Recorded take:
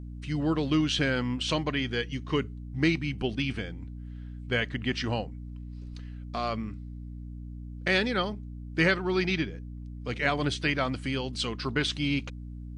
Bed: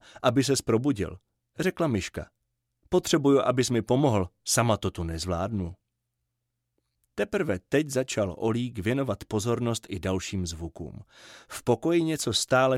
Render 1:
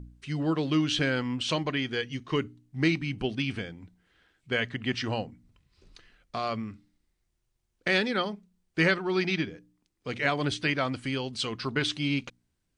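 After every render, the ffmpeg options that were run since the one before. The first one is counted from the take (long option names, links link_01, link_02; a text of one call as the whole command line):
ffmpeg -i in.wav -af "bandreject=frequency=60:width_type=h:width=4,bandreject=frequency=120:width_type=h:width=4,bandreject=frequency=180:width_type=h:width=4,bandreject=frequency=240:width_type=h:width=4,bandreject=frequency=300:width_type=h:width=4" out.wav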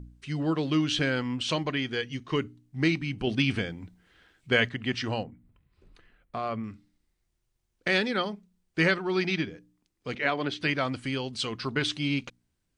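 ffmpeg -i in.wav -filter_complex "[0:a]asettb=1/sr,asplit=3[link_01][link_02][link_03];[link_01]atrim=end=5.234[link_04];[link_02]atrim=start=5.23:end=6.64,asetpts=PTS-STARTPTS,afade=type=in:duration=0.004:curve=qsin,afade=type=out:start_time=1.406:duration=0.004:curve=qsin,equalizer=frequency=5400:width=0.88:gain=-14.5[link_05];[link_03]atrim=start=6.636[link_06];[link_04][link_05]acrossfade=duration=0.004:curve1=hsin:curve2=qsin[link_07];[link_07][link_06]acrossfade=duration=0.004:curve1=qsin:curve2=hsin,asettb=1/sr,asplit=3[link_08][link_09][link_10];[link_08]atrim=end=10.154[link_11];[link_09]atrim=start=10.15:end=10.61,asetpts=PTS-STARTPTS,afade=type=in:duration=0.004:curve=qsin,afade=type=out:start_time=0.456:duration=0.004:curve=qsin,highpass=200,lowpass=4000[link_12];[link_10]atrim=start=10.606[link_13];[link_11][link_12]acrossfade=duration=0.004:curve1=hsin:curve2=qsin[link_14];[link_14][link_13]acrossfade=duration=0.004:curve1=qsin:curve2=hsin,asplit=3[link_15][link_16][link_17];[link_15]atrim=end=3.272[link_18];[link_16]atrim=start=3.268:end=4.692,asetpts=PTS-STARTPTS,volume=5dB[link_19];[link_17]atrim=start=4.688[link_20];[link_18][link_19]acrossfade=duration=0.004:curve1=hsin:curve2=hsin[link_21];[link_21][link_20]acrossfade=duration=0.004:curve1=hsin:curve2=hsin" out.wav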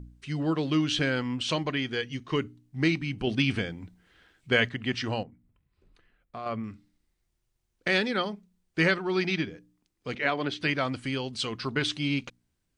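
ffmpeg -i in.wav -filter_complex "[0:a]asplit=3[link_01][link_02][link_03];[link_01]atrim=end=5.232[link_04];[link_02]atrim=start=5.228:end=6.462,asetpts=PTS-STARTPTS,volume=-5.5dB[link_05];[link_03]atrim=start=6.458[link_06];[link_04][link_05]acrossfade=duration=0.004:curve1=hsin:curve2=hsin[link_07];[link_07][link_06]acrossfade=duration=0.004:curve1=hsin:curve2=hsin" out.wav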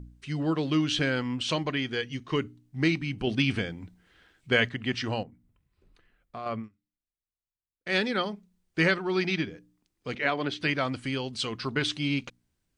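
ffmpeg -i in.wav -filter_complex "[0:a]asplit=3[link_01][link_02][link_03];[link_01]atrim=end=6.69,asetpts=PTS-STARTPTS,afade=type=out:start_time=6.54:duration=0.15:curve=qsin:silence=0.0668344[link_04];[link_02]atrim=start=6.69:end=7.85,asetpts=PTS-STARTPTS,volume=-23.5dB[link_05];[link_03]atrim=start=7.85,asetpts=PTS-STARTPTS,afade=type=in:duration=0.15:curve=qsin:silence=0.0668344[link_06];[link_04][link_05][link_06]concat=n=3:v=0:a=1" out.wav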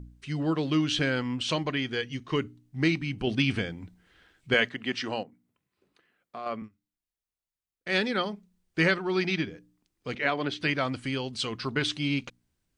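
ffmpeg -i in.wav -filter_complex "[0:a]asettb=1/sr,asplit=3[link_01][link_02][link_03];[link_01]atrim=end=4.544[link_04];[link_02]atrim=start=4.54:end=6.62,asetpts=PTS-STARTPTS,afade=type=in:duration=0.004:curve=qsin,afade=type=out:start_time=2.076:duration=0.004:curve=qsin,highpass=220[link_05];[link_03]atrim=start=6.616[link_06];[link_04][link_05]acrossfade=duration=0.004:curve1=hsin:curve2=qsin[link_07];[link_07][link_06]acrossfade=duration=0.004:curve1=qsin:curve2=hsin" out.wav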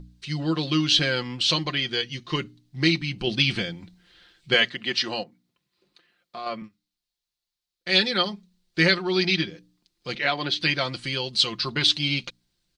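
ffmpeg -i in.wav -af "equalizer=frequency=4200:width=1.4:gain=13.5,aecho=1:1:5.7:0.54" out.wav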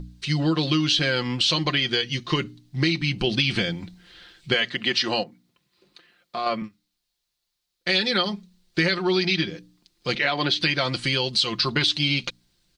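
ffmpeg -i in.wav -filter_complex "[0:a]asplit=2[link_01][link_02];[link_02]alimiter=limit=-16dB:level=0:latency=1:release=68,volume=2dB[link_03];[link_01][link_03]amix=inputs=2:normalize=0,acompressor=threshold=-19dB:ratio=4" out.wav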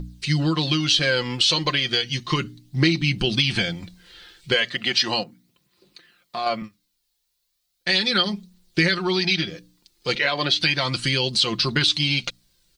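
ffmpeg -i in.wav -af "crystalizer=i=1:c=0,aphaser=in_gain=1:out_gain=1:delay=2.4:decay=0.36:speed=0.35:type=triangular" out.wav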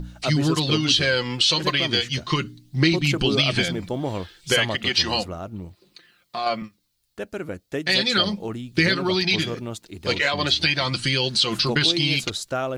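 ffmpeg -i in.wav -i bed.wav -filter_complex "[1:a]volume=-4.5dB[link_01];[0:a][link_01]amix=inputs=2:normalize=0" out.wav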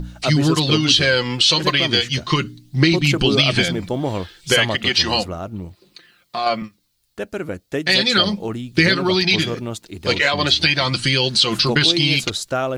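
ffmpeg -i in.wav -af "volume=4.5dB,alimiter=limit=-3dB:level=0:latency=1" out.wav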